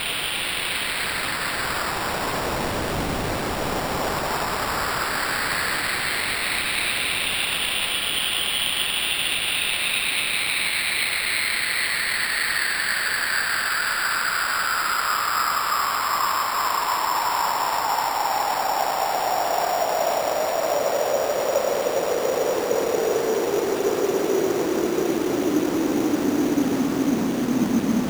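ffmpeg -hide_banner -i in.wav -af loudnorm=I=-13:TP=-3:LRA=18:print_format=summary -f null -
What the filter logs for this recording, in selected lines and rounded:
Input Integrated:    -22.2 LUFS
Input True Peak:      -9.1 dBTP
Input LRA:             2.9 LU
Input Threshold:     -32.2 LUFS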